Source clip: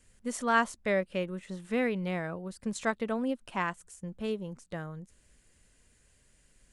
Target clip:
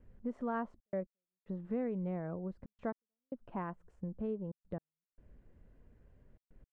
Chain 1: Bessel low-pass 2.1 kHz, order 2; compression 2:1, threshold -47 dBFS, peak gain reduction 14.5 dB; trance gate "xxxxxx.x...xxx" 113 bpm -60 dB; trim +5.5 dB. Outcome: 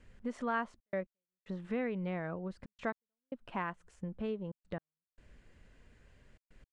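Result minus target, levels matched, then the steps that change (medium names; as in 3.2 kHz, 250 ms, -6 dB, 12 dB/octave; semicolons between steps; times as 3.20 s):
2 kHz band +9.0 dB
change: Bessel low-pass 630 Hz, order 2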